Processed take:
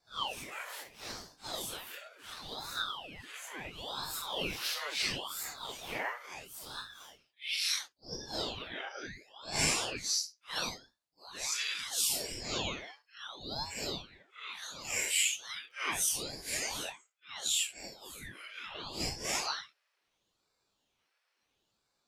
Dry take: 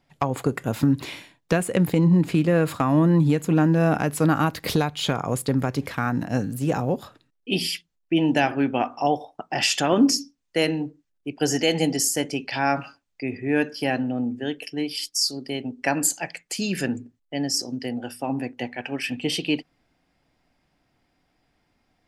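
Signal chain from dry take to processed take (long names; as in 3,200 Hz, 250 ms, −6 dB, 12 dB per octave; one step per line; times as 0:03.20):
random phases in long frames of 200 ms
dynamic equaliser 4,500 Hz, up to +5 dB, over −42 dBFS, Q 2.4
downward compressor 3 to 1, threshold −21 dBFS, peak gain reduction 7.5 dB
Butterworth high-pass 910 Hz 96 dB per octave
0:14.54–0:16.08: surface crackle 96 per second −56 dBFS
ring modulator whose carrier an LFO sweeps 1,500 Hz, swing 75%, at 0.73 Hz
level −2 dB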